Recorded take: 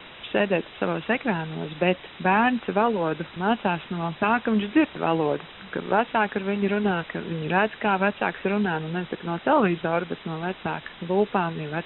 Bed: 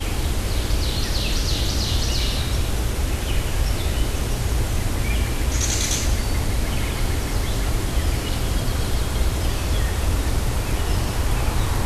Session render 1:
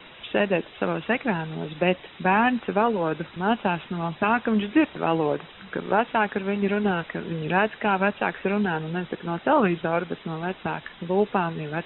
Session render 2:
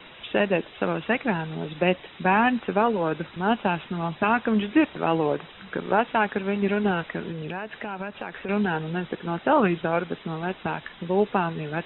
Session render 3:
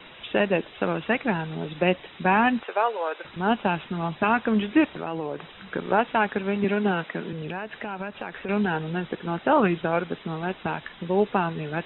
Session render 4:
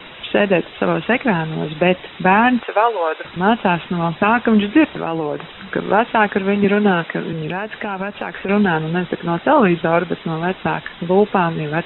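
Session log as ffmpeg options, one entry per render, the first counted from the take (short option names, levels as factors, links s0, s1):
-af "afftdn=nr=6:nf=-44"
-filter_complex "[0:a]asettb=1/sr,asplit=3[s0][s1][s2];[s0]atrim=end=7.304[s3];[s1]atrim=start=7.3:end=8.49,asetpts=PTS-STARTPTS,afade=t=in:d=0.004:c=qsin,afade=t=out:st=1.186:d=0.004:c=qsin,acompressor=threshold=0.0355:ratio=5:attack=3.2:release=140:knee=1:detection=peak[s4];[s2]atrim=start=8.486[s5];[s3][s4]acrossfade=d=0.004:c1=hsin:c2=qsin[s6];[s6][s5]acrossfade=d=0.004:c1=qsin:c2=hsin"
-filter_complex "[0:a]asettb=1/sr,asplit=3[s0][s1][s2];[s0]atrim=end=2.634[s3];[s1]atrim=start=2.63:end=3.25,asetpts=PTS-STARTPTS,afade=t=in:d=0.004:c=qsin,afade=t=out:st=0.616:d=0.004:c=qsin,highpass=f=500:w=0.5412,highpass=f=500:w=1.3066[s4];[s2]atrim=start=3.246[s5];[s3][s4]acrossfade=d=0.004:c1=hsin:c2=qsin[s6];[s6][s5]acrossfade=d=0.004:c1=qsin:c2=hsin,asettb=1/sr,asplit=3[s7][s8][s9];[s7]atrim=end=4.904[s10];[s8]atrim=start=4.9:end=5.4,asetpts=PTS-STARTPTS,afade=t=in:d=0.004:c=qsin,afade=t=out:st=0.496:d=0.004:c=qsin,acompressor=threshold=0.0355:ratio=2.5:attack=3.2:release=140:knee=1:detection=peak[s11];[s9]atrim=start=5.396[s12];[s10][s11]acrossfade=d=0.004:c1=hsin:c2=qsin[s13];[s13][s12]acrossfade=d=0.004:c1=qsin:c2=hsin,asettb=1/sr,asplit=3[s14][s15][s16];[s14]atrim=end=6.644[s17];[s15]atrim=start=6.64:end=7.33,asetpts=PTS-STARTPTS,afade=t=in:d=0.004:c=qsin,afade=t=out:st=0.686:d=0.004:c=qsin,highpass=f=140:w=0.5412,highpass=f=140:w=1.3066[s18];[s16]atrim=start=7.326[s19];[s17][s18]acrossfade=d=0.004:c1=hsin:c2=qsin[s20];[s20][s19]acrossfade=d=0.004:c1=qsin:c2=hsin"
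-af "volume=2.82,alimiter=limit=0.708:level=0:latency=1"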